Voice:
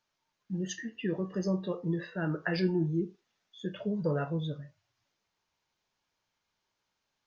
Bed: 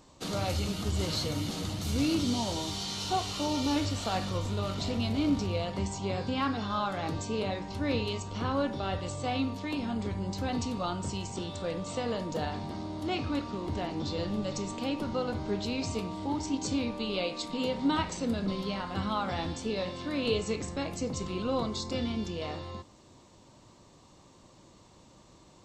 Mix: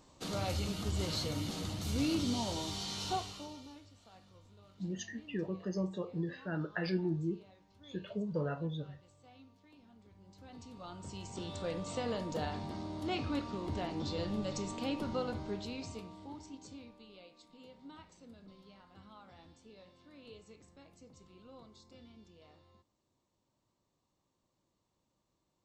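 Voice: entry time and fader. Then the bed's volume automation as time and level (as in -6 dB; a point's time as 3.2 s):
4.30 s, -5.0 dB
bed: 3.11 s -4.5 dB
3.84 s -28 dB
10.07 s -28 dB
11.53 s -4 dB
15.18 s -4 dB
17.21 s -24.5 dB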